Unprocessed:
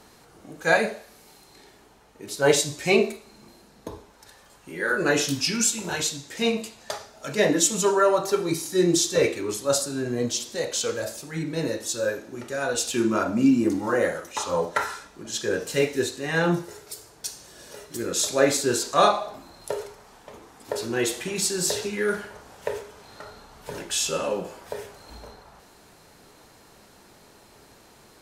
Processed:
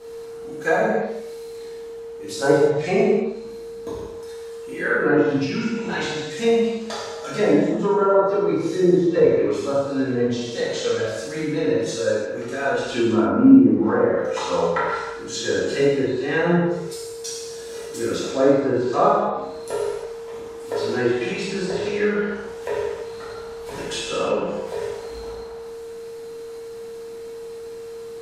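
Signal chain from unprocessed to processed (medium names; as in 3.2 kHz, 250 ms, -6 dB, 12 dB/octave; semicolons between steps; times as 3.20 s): whistle 460 Hz -43 dBFS; low-pass that closes with the level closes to 970 Hz, closed at -19 dBFS; gated-style reverb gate 370 ms falling, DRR -7.5 dB; trim -3 dB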